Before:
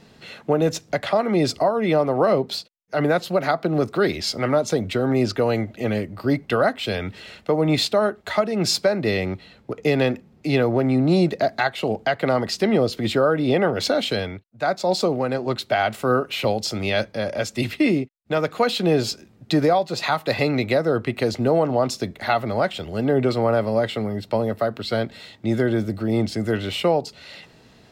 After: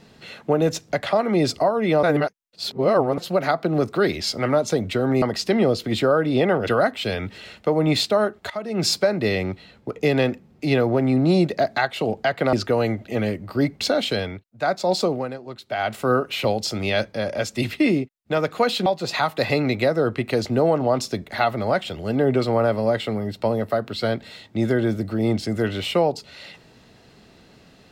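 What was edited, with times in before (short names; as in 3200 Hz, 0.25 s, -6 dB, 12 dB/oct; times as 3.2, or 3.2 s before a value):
2.03–3.18 reverse
5.22–6.5 swap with 12.35–13.81
8.32–8.66 fade in, from -17.5 dB
14.94–16.09 dip -12 dB, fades 0.44 s equal-power
18.86–19.75 cut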